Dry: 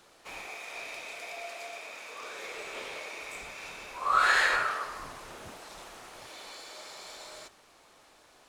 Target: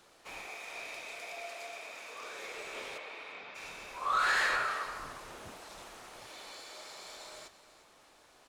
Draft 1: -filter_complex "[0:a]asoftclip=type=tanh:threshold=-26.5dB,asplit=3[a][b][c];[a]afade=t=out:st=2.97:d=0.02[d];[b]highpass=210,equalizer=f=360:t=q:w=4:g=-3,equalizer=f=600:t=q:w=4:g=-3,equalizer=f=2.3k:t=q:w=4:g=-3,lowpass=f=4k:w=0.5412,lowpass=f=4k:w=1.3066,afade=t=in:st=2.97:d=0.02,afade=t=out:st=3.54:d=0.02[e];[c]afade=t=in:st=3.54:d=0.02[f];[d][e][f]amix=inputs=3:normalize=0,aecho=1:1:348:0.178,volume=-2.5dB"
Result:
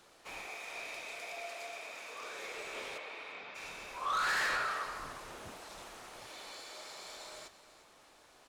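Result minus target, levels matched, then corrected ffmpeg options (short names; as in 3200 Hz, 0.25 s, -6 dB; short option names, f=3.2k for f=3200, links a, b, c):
soft clip: distortion +7 dB
-filter_complex "[0:a]asoftclip=type=tanh:threshold=-20dB,asplit=3[a][b][c];[a]afade=t=out:st=2.97:d=0.02[d];[b]highpass=210,equalizer=f=360:t=q:w=4:g=-3,equalizer=f=600:t=q:w=4:g=-3,equalizer=f=2.3k:t=q:w=4:g=-3,lowpass=f=4k:w=0.5412,lowpass=f=4k:w=1.3066,afade=t=in:st=2.97:d=0.02,afade=t=out:st=3.54:d=0.02[e];[c]afade=t=in:st=3.54:d=0.02[f];[d][e][f]amix=inputs=3:normalize=0,aecho=1:1:348:0.178,volume=-2.5dB"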